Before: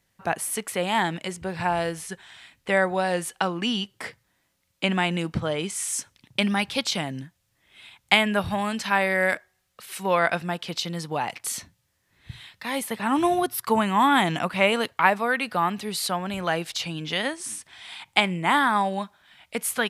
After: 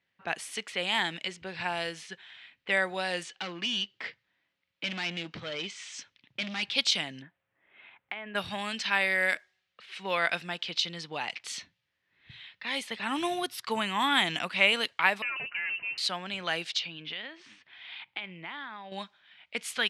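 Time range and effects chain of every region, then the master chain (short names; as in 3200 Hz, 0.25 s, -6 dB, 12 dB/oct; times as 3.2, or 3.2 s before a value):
3.23–6.63 LPF 7500 Hz 24 dB/oct + overloaded stage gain 25.5 dB
7.22–8.35 Chebyshev low-pass 1800 Hz + bell 570 Hz +9 dB 2.6 oct + compressor 16:1, threshold -29 dBFS
15.22–15.98 tube stage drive 29 dB, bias 0.5 + inverted band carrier 2900 Hz
16.79–18.92 LPF 4100 Hz + compressor 5:1, threshold -32 dBFS
whole clip: low-pass opened by the level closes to 2200 Hz, open at -20 dBFS; weighting filter D; gain -9 dB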